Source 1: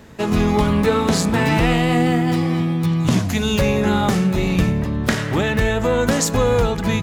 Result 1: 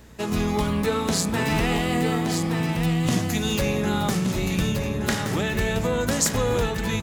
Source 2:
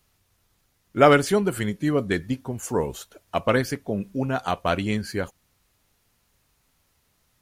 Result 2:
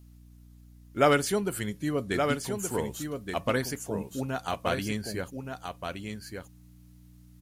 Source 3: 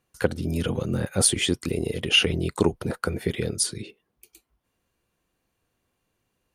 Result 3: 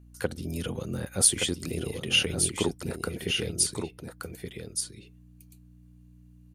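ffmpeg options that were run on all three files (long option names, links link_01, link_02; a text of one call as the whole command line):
ffmpeg -i in.wav -filter_complex "[0:a]highshelf=frequency=4400:gain=8.5,aeval=exprs='val(0)+0.00631*(sin(2*PI*60*n/s)+sin(2*PI*2*60*n/s)/2+sin(2*PI*3*60*n/s)/3+sin(2*PI*4*60*n/s)/4+sin(2*PI*5*60*n/s)/5)':channel_layout=same,asplit=2[link_01][link_02];[link_02]aecho=0:1:1173:0.501[link_03];[link_01][link_03]amix=inputs=2:normalize=0,volume=-7dB" out.wav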